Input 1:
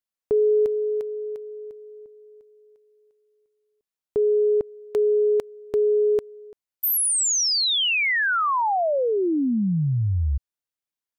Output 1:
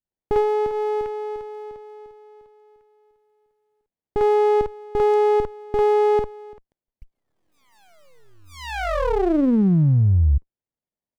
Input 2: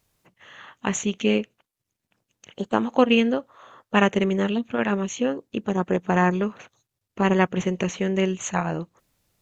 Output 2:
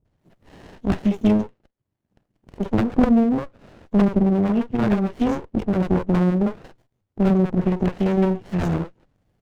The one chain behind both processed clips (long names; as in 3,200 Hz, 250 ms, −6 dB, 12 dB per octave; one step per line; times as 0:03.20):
treble cut that deepens with the level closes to 360 Hz, closed at −16 dBFS
high-shelf EQ 3,100 Hz −7 dB
three-band delay without the direct sound lows, mids, highs 50/190 ms, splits 460/5,300 Hz
windowed peak hold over 33 samples
level +6.5 dB